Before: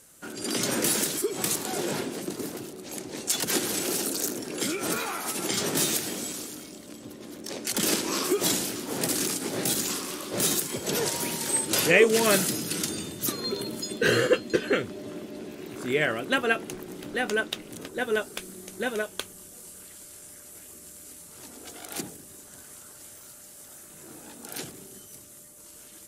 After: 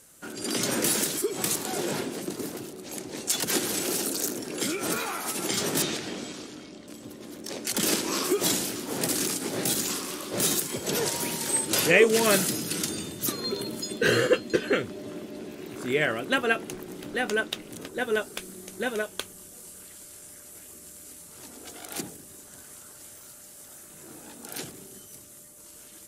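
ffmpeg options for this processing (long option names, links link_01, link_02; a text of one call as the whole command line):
ffmpeg -i in.wav -filter_complex "[0:a]asettb=1/sr,asplit=3[link_01][link_02][link_03];[link_01]atrim=end=5.824[link_04];[link_02]atrim=start=5.82:end=6.88,asetpts=PTS-STARTPTS,afade=type=in:duration=0.004:curve=qsin,afade=type=out:start_time=1.056:duration=0.004:curve=qsin,lowpass=4600[link_05];[link_03]atrim=start=6.876[link_06];[link_04][link_05]acrossfade=duration=0.004:curve1=hsin:curve2=qsin[link_07];[link_07][link_06]acrossfade=duration=0.004:curve1=qsin:curve2=hsin" out.wav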